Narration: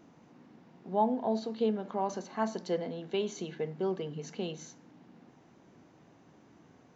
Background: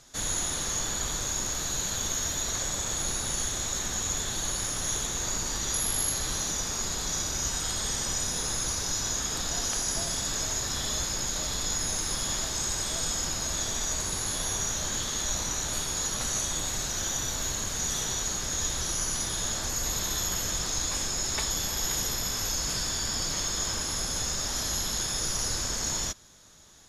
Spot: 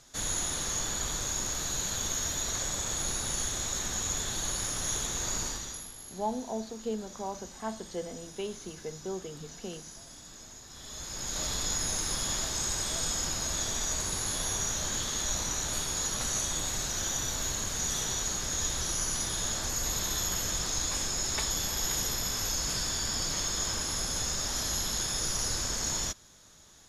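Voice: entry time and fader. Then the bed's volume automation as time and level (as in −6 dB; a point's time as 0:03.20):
5.25 s, −4.5 dB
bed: 0:05.45 −2 dB
0:05.95 −18.5 dB
0:10.67 −18.5 dB
0:11.42 −1.5 dB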